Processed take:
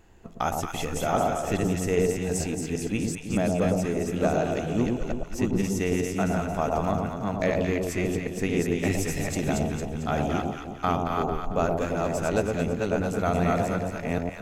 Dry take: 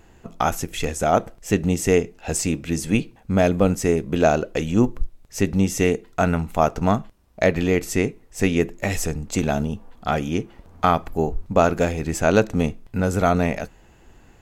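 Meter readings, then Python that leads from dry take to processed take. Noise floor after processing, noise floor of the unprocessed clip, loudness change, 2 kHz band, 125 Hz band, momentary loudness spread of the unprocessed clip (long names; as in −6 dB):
−38 dBFS, −52 dBFS, −5.0 dB, −5.5 dB, −4.0 dB, 7 LU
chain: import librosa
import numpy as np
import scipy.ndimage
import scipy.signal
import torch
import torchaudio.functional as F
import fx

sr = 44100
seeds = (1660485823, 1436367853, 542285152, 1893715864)

y = fx.reverse_delay(x, sr, ms=394, wet_db=-2.5)
y = fx.rider(y, sr, range_db=10, speed_s=2.0)
y = fx.echo_alternate(y, sr, ms=112, hz=950.0, feedback_pct=67, wet_db=-2.5)
y = F.gain(torch.from_numpy(y), -9.0).numpy()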